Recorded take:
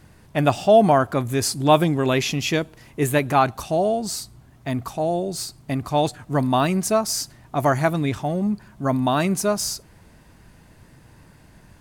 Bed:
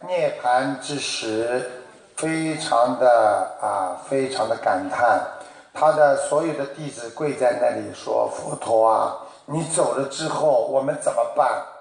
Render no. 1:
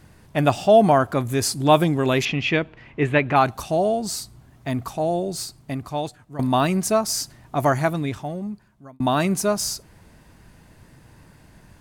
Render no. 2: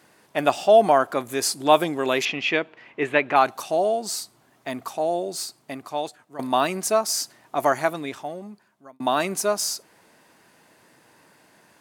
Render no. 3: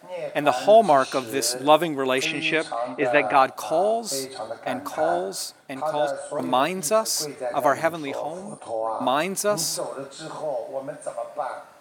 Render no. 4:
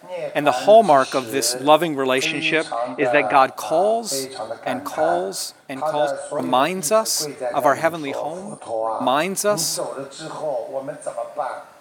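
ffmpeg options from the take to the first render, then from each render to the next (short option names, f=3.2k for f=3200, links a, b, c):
-filter_complex "[0:a]asettb=1/sr,asplit=3[a][b][c];[a]atrim=end=2.254[d];[b]atrim=start=2.25:end=3.36,asetpts=PTS-STARTPTS,afade=t=in:d=0.004:c=qsin,afade=t=out:st=1.106:d=0.004:c=qsin,lowpass=f=2.5k:t=q:w=1.7[e];[c]atrim=start=3.356[f];[d][e]acrossfade=d=0.004:c1=hsin:c2=qsin[g];[g][f]acrossfade=d=0.004:c1=qsin:c2=hsin,asplit=3[h][i][j];[h]atrim=end=6.39,asetpts=PTS-STARTPTS,afade=t=out:st=5.3:d=1.09:silence=0.158489[k];[i]atrim=start=6.39:end=9,asetpts=PTS-STARTPTS,afade=t=in:d=0.004:c=hsin:silence=0.158489,afade=t=out:st=1.28:d=1.33[l];[j]atrim=start=9,asetpts=PTS-STARTPTS,afade=t=in:d=0.004:c=hsin[m];[k][l][m]concat=n=3:v=0:a=1"
-af "highpass=360"
-filter_complex "[1:a]volume=-10.5dB[a];[0:a][a]amix=inputs=2:normalize=0"
-af "volume=3.5dB,alimiter=limit=-2dB:level=0:latency=1"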